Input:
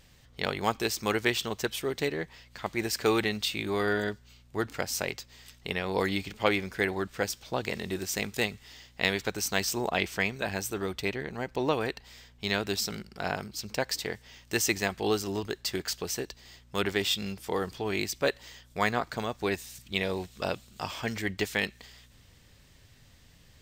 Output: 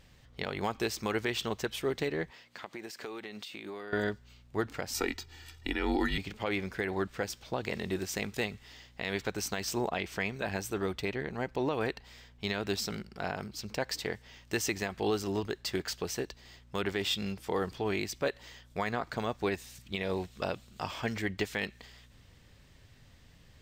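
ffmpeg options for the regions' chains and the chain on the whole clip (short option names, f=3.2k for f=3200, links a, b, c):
-filter_complex "[0:a]asettb=1/sr,asplit=3[a][b][c];[a]atrim=end=2.314[d];[b]atrim=start=2.31:end=3.93,asetpts=PTS-STARTPTS,afade=t=in:d=0.004:c=qsin,afade=t=out:st=1.616:d=0.004:c=qsin,highpass=220,acompressor=threshold=-37dB:ratio=12:attack=3.2:release=140:knee=1:detection=peak[e];[c]atrim=start=3.926[f];[d][e]acrossfade=d=0.004:c1=hsin:c2=qsin[g];[g][f]acrossfade=d=0.004:c1=qsin:c2=hsin,asettb=1/sr,asplit=3[h][i][j];[h]atrim=end=4.944[k];[i]atrim=start=4.94:end=6.18,asetpts=PTS-STARTPTS,afade=t=in:d=0.004:c=qsin,afade=t=out:st=1.236:d=0.004:c=qsin,aecho=1:1:2:0.96,atrim=end_sample=54684,afreqshift=-140[l];[j]atrim=start=6.176[m];[k][l]acrossfade=d=0.004:c1=hsin:c2=qsin[n];[n][m]acrossfade=d=0.004:c1=qsin:c2=hsin,highshelf=f=4.5k:g=-7.5,alimiter=limit=-19.5dB:level=0:latency=1:release=101"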